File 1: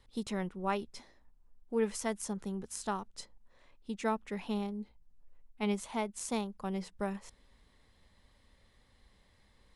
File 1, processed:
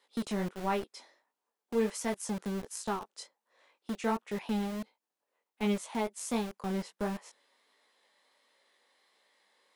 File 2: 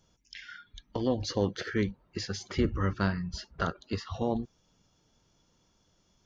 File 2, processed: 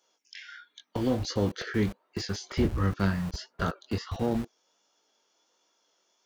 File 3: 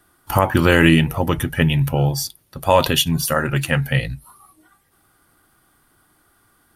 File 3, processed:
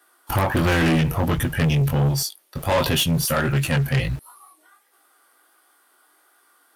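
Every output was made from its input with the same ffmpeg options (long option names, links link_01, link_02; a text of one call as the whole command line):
ffmpeg -i in.wav -filter_complex "[0:a]acrossover=split=360[link_01][link_02];[link_01]aeval=exprs='val(0)*gte(abs(val(0)),0.00944)':channel_layout=same[link_03];[link_02]flanger=delay=16.5:depth=7.4:speed=1.4[link_04];[link_03][link_04]amix=inputs=2:normalize=0,asoftclip=type=tanh:threshold=-19.5dB,volume=4dB" out.wav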